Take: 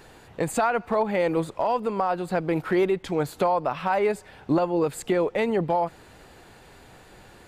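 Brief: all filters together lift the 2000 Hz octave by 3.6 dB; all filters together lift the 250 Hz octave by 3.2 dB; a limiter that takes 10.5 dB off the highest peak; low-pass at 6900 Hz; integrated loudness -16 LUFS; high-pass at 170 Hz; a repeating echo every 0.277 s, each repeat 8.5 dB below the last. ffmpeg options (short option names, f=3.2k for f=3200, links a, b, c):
-af "highpass=170,lowpass=6.9k,equalizer=f=250:t=o:g=6,equalizer=f=2k:t=o:g=4.5,alimiter=limit=-18dB:level=0:latency=1,aecho=1:1:277|554|831|1108:0.376|0.143|0.0543|0.0206,volume=11.5dB"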